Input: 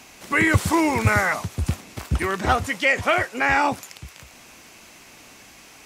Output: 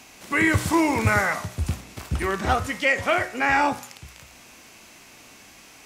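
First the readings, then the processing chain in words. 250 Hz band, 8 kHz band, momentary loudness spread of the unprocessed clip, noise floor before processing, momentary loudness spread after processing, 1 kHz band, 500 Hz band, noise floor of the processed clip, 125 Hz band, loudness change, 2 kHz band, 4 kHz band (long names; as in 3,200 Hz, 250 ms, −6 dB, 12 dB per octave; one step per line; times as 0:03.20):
−0.5 dB, −1.5 dB, 10 LU, −48 dBFS, 10 LU, −1.5 dB, −1.0 dB, −49 dBFS, −2.5 dB, −1.5 dB, −1.5 dB, −2.0 dB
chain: harmonic and percussive parts rebalanced harmonic +4 dB
hum removal 61.16 Hz, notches 37
level −3.5 dB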